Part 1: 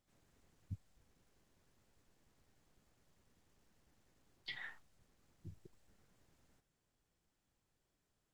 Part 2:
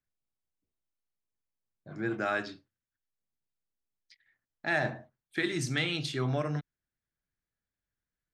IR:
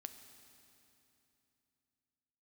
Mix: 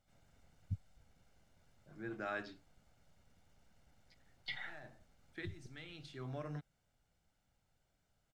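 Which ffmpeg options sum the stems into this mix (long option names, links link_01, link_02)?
-filter_complex "[0:a]aecho=1:1:1.4:0.51,volume=3dB,asplit=2[link_01][link_02];[1:a]volume=-9dB[link_03];[link_02]apad=whole_len=367406[link_04];[link_03][link_04]sidechaincompress=threshold=-56dB:ratio=12:attack=16:release=1070[link_05];[link_01][link_05]amix=inputs=2:normalize=0,highshelf=frequency=7400:gain=-8"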